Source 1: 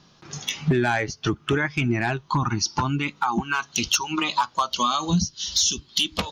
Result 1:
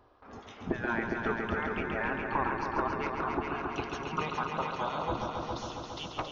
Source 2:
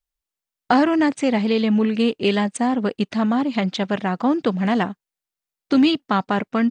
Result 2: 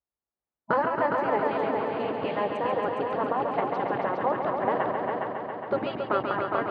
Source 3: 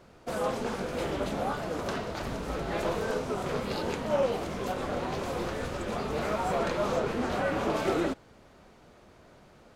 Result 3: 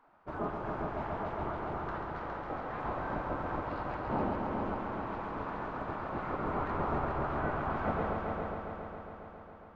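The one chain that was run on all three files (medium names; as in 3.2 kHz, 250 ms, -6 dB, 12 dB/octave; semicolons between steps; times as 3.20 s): low-pass 1 kHz 12 dB/octave; spectral gate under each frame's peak -10 dB weak; on a send: multi-head delay 137 ms, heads all three, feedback 65%, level -7.5 dB; on the sum: trim +1.5 dB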